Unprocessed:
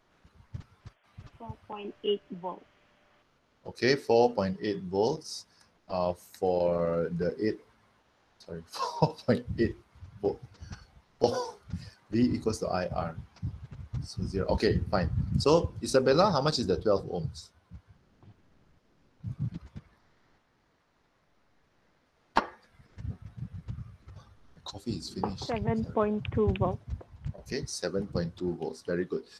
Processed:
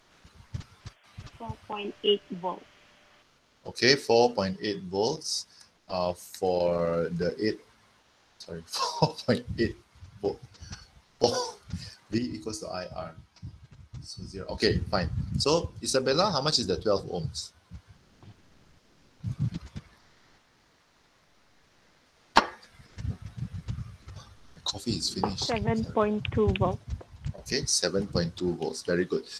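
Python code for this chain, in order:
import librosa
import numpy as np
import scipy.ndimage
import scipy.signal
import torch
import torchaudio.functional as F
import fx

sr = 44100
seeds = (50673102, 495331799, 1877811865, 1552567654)

y = fx.peak_eq(x, sr, hz=6600.0, db=9.5, octaves=2.8)
y = fx.rider(y, sr, range_db=4, speed_s=2.0)
y = fx.comb_fb(y, sr, f0_hz=320.0, decay_s=0.38, harmonics='all', damping=0.0, mix_pct=70, at=(12.18, 14.62))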